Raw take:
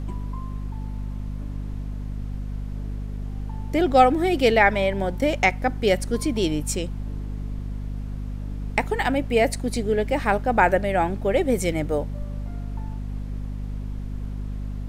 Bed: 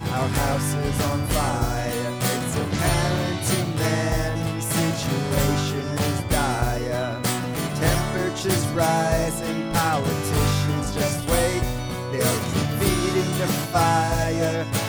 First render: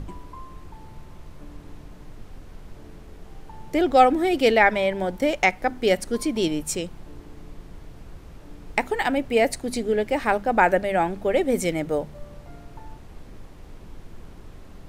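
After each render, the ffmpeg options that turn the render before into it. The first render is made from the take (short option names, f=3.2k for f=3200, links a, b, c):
-af "bandreject=f=50:t=h:w=6,bandreject=f=100:t=h:w=6,bandreject=f=150:t=h:w=6,bandreject=f=200:t=h:w=6,bandreject=f=250:t=h:w=6"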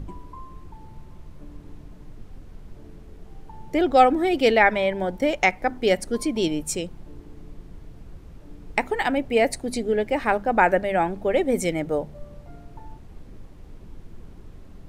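-af "afftdn=nr=6:nf=-44"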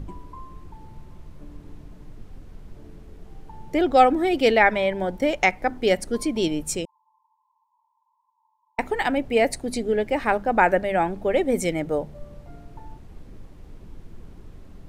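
-filter_complex "[0:a]asettb=1/sr,asplit=3[a][b][c];[a]atrim=end=6.854[d];[b]atrim=start=6.85:end=8.79,asetpts=PTS-STARTPTS,afade=t=in:d=0.004:c=qsin,afade=t=out:st=1.936:d=0.004:c=qsin,asuperpass=centerf=960:order=12:qfactor=4.7[e];[c]atrim=start=8.786[f];[d][e]acrossfade=d=0.004:c1=hsin:c2=qsin[g];[g][f]acrossfade=d=0.004:c1=qsin:c2=hsin"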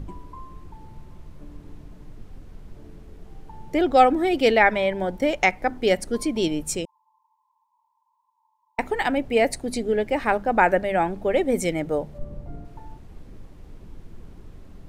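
-filter_complex "[0:a]asettb=1/sr,asplit=3[a][b][c];[a]atrim=end=12.184[d];[b]atrim=start=12.18:end=12.65,asetpts=PTS-STARTPTS,afade=t=in:d=0.004:c=qsin,afade=t=out:st=0.466:d=0.004:c=qsin,tiltshelf=f=940:g=6.5[e];[c]atrim=start=12.646[f];[d][e]acrossfade=d=0.004:c1=hsin:c2=qsin[g];[g][f]acrossfade=d=0.004:c1=qsin:c2=hsin"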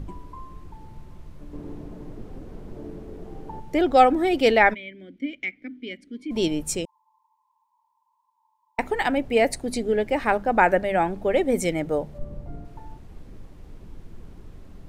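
-filter_complex "[0:a]asettb=1/sr,asplit=3[a][b][c];[a]atrim=end=1.534[d];[b]atrim=start=1.53:end=3.6,asetpts=PTS-STARTPTS,afade=t=in:d=0.004:c=qsin,afade=t=out:st=2.066:d=0.004:c=qsin,equalizer=f=400:w=0.47:g=12[e];[c]atrim=start=3.596[f];[d][e]acrossfade=d=0.004:c1=hsin:c2=qsin[g];[g][f]acrossfade=d=0.004:c1=qsin:c2=hsin,asplit=3[h][i][j];[h]afade=t=out:st=4.73:d=0.02[k];[i]asplit=3[l][m][n];[l]bandpass=f=270:t=q:w=8,volume=0dB[o];[m]bandpass=f=2.29k:t=q:w=8,volume=-6dB[p];[n]bandpass=f=3.01k:t=q:w=8,volume=-9dB[q];[o][p][q]amix=inputs=3:normalize=0,afade=t=in:st=4.73:d=0.02,afade=t=out:st=6.3:d=0.02[r];[j]afade=t=in:st=6.3:d=0.02[s];[k][r][s]amix=inputs=3:normalize=0"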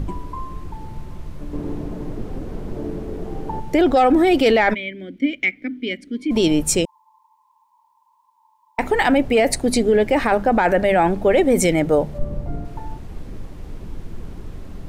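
-filter_complex "[0:a]asplit=2[a][b];[b]acontrast=65,volume=0dB[c];[a][c]amix=inputs=2:normalize=0,alimiter=limit=-8dB:level=0:latency=1:release=23"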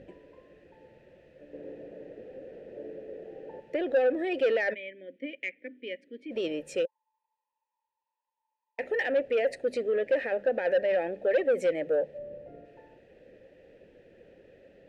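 -filter_complex "[0:a]asplit=3[a][b][c];[a]bandpass=f=530:t=q:w=8,volume=0dB[d];[b]bandpass=f=1.84k:t=q:w=8,volume=-6dB[e];[c]bandpass=f=2.48k:t=q:w=8,volume=-9dB[f];[d][e][f]amix=inputs=3:normalize=0,asoftclip=type=tanh:threshold=-18.5dB"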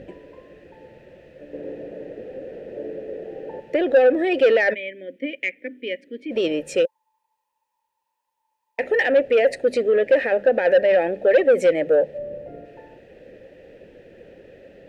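-af "volume=9.5dB"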